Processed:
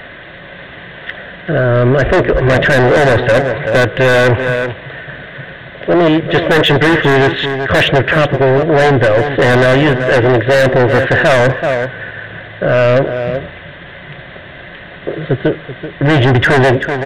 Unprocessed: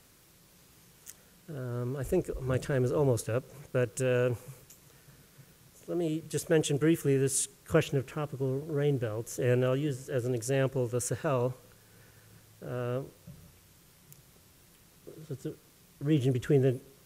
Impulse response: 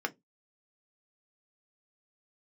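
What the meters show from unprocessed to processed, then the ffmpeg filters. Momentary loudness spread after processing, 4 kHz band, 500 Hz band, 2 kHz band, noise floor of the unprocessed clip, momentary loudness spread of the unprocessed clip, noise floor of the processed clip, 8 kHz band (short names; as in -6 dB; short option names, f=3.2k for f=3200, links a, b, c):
19 LU, +25.5 dB, +20.0 dB, +29.5 dB, -60 dBFS, 14 LU, -33 dBFS, n/a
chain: -af "aresample=8000,asoftclip=type=hard:threshold=-29.5dB,aresample=44100,superequalizer=8b=2.51:11b=3.16,aeval=exprs='0.1*(cos(1*acos(clip(val(0)/0.1,-1,1)))-cos(1*PI/2))+0.0158*(cos(2*acos(clip(val(0)/0.1,-1,1)))-cos(2*PI/2))+0.00141*(cos(6*acos(clip(val(0)/0.1,-1,1)))-cos(6*PI/2))+0.00398*(cos(8*acos(clip(val(0)/0.1,-1,1)))-cos(8*PI/2))':c=same,lowshelf=f=270:g=-7,aecho=1:1:382:0.2,apsyclip=35dB,volume=-5.5dB"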